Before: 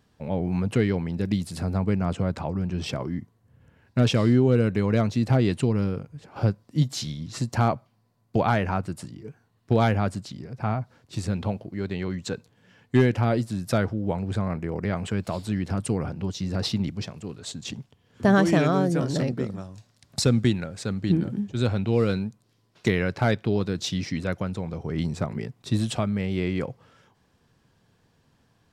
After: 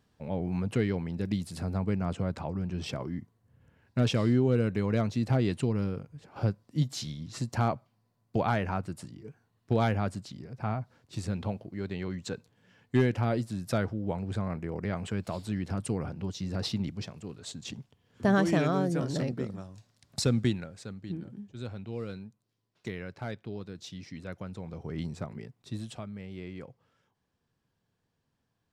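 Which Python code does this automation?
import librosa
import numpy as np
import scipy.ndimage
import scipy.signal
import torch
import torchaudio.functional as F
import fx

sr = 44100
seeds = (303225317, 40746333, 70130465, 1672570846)

y = fx.gain(x, sr, db=fx.line((20.48, -5.5), (21.03, -15.0), (24.02, -15.0), (24.86, -7.0), (26.06, -15.0)))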